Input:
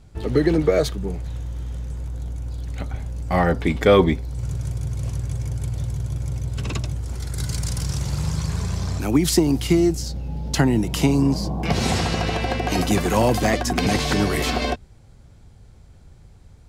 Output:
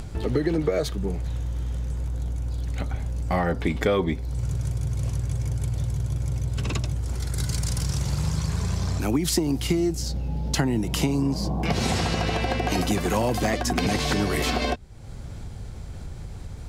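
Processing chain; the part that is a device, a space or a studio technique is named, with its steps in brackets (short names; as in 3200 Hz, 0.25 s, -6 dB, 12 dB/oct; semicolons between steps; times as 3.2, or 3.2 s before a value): upward and downward compression (upward compressor, threshold -24 dBFS; compressor 4:1, threshold -20 dBFS, peak gain reduction 9 dB)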